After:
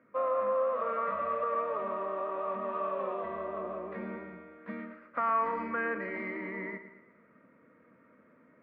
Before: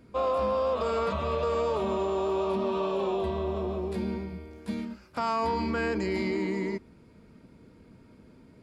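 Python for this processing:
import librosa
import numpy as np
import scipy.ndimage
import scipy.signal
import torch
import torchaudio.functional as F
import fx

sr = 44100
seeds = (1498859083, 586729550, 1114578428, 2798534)

p1 = fx.rider(x, sr, range_db=4, speed_s=2.0)
p2 = fx.cabinet(p1, sr, low_hz=280.0, low_slope=12, high_hz=2100.0, hz=(390.0, 560.0, 830.0, 1200.0, 1900.0), db=(-8, 7, -8, 10, 10))
p3 = p2 + fx.echo_feedback(p2, sr, ms=113, feedback_pct=48, wet_db=-12.0, dry=0)
y = p3 * librosa.db_to_amplitude(-5.0)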